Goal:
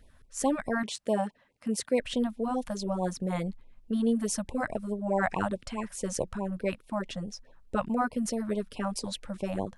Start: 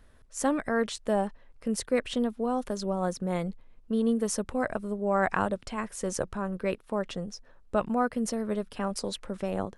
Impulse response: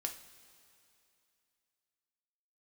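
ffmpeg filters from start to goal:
-filter_complex "[0:a]asettb=1/sr,asplit=3[link_01][link_02][link_03];[link_01]atrim=end=0.834[link_04];[link_02]atrim=start=0.83:end=2,asetpts=PTS-STARTPTS,afade=type=in:duration=0.004:curve=qsin,afade=type=out:start_time=1.166:duration=0.004:curve=qsin,highpass=140[link_05];[link_03]atrim=start=1.996[link_06];[link_04][link_05]acrossfade=duration=0.004:curve1=hsin:curve2=qsin[link_07];[link_07][link_06]acrossfade=duration=0.004:curve1=qsin:curve2=hsin,afftfilt=real='re*(1-between(b*sr/1024,340*pow(1600/340,0.5+0.5*sin(2*PI*4.7*pts/sr))/1.41,340*pow(1600/340,0.5+0.5*sin(2*PI*4.7*pts/sr))*1.41))':imag='im*(1-between(b*sr/1024,340*pow(1600/340,0.5+0.5*sin(2*PI*4.7*pts/sr))/1.41,340*pow(1600/340,0.5+0.5*sin(2*PI*4.7*pts/sr))*1.41))':win_size=1024:overlap=0.75"

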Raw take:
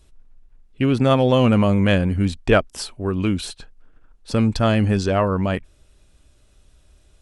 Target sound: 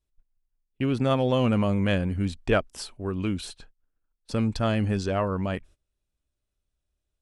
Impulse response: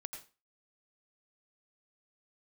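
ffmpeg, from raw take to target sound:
-af "agate=range=-20dB:threshold=-41dB:ratio=16:detection=peak,volume=-7dB"

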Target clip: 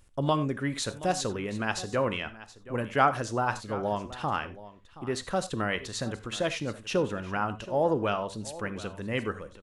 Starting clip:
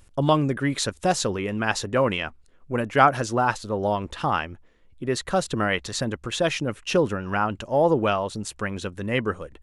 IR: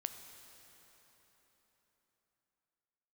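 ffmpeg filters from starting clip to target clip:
-filter_complex "[0:a]aecho=1:1:725:0.141[link_01];[1:a]atrim=start_sample=2205,atrim=end_sample=4410[link_02];[link_01][link_02]afir=irnorm=-1:irlink=0,volume=-4dB"

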